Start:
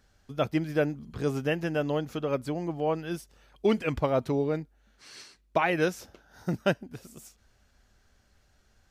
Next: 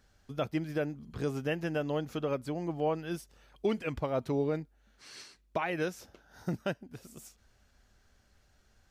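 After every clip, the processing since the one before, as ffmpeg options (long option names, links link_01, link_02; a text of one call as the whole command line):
ffmpeg -i in.wav -af "alimiter=limit=-18.5dB:level=0:latency=1:release=484,volume=-1.5dB" out.wav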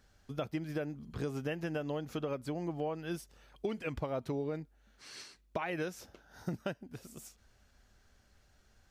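ffmpeg -i in.wav -af "acompressor=threshold=-32dB:ratio=6" out.wav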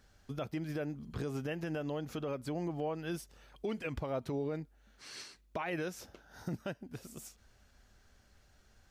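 ffmpeg -i in.wav -af "alimiter=level_in=4.5dB:limit=-24dB:level=0:latency=1:release=44,volume=-4.5dB,volume=1.5dB" out.wav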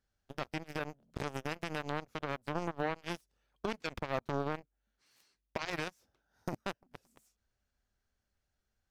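ffmpeg -i in.wav -af "aeval=exprs='0.0473*(cos(1*acos(clip(val(0)/0.0473,-1,1)))-cos(1*PI/2))+0.0168*(cos(3*acos(clip(val(0)/0.0473,-1,1)))-cos(3*PI/2))':channel_layout=same,volume=5dB" out.wav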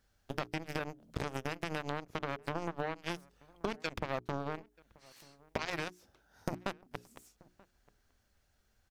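ffmpeg -i in.wav -filter_complex "[0:a]acompressor=threshold=-42dB:ratio=5,bandreject=frequency=60:width_type=h:width=6,bandreject=frequency=120:width_type=h:width=6,bandreject=frequency=180:width_type=h:width=6,bandreject=frequency=240:width_type=h:width=6,bandreject=frequency=300:width_type=h:width=6,bandreject=frequency=360:width_type=h:width=6,bandreject=frequency=420:width_type=h:width=6,asplit=2[link_01][link_02];[link_02]adelay=932.9,volume=-24dB,highshelf=frequency=4000:gain=-21[link_03];[link_01][link_03]amix=inputs=2:normalize=0,volume=10dB" out.wav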